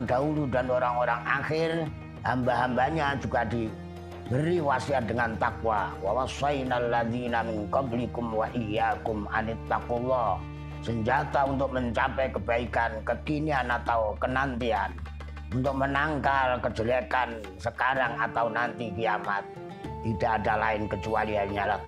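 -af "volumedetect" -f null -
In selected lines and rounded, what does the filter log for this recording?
mean_volume: -28.1 dB
max_volume: -10.5 dB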